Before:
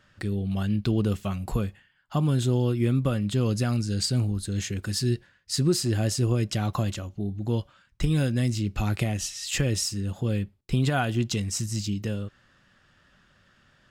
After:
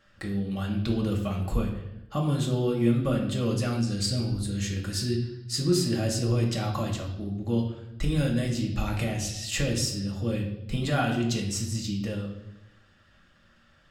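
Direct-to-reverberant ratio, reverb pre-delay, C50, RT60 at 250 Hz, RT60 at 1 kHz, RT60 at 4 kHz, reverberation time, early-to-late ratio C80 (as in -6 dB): -1.0 dB, 4 ms, 7.0 dB, 1.1 s, 0.80 s, 0.85 s, 0.90 s, 9.5 dB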